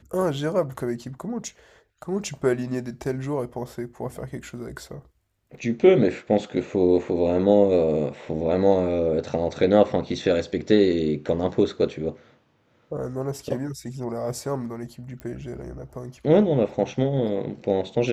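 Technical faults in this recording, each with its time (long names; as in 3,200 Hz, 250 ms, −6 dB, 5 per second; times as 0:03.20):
0:15.20: click −23 dBFS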